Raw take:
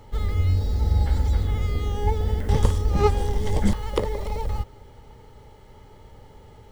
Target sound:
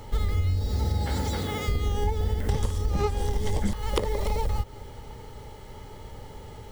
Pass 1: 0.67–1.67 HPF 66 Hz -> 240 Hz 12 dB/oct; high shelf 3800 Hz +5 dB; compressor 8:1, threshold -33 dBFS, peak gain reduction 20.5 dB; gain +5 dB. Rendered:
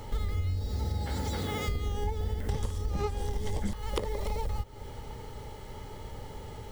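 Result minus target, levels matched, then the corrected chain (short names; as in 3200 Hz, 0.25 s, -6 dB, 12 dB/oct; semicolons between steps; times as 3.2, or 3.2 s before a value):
compressor: peak gain reduction +5.5 dB
0.67–1.67 HPF 66 Hz -> 240 Hz 12 dB/oct; high shelf 3800 Hz +5 dB; compressor 8:1, threshold -26.5 dBFS, peak gain reduction 15 dB; gain +5 dB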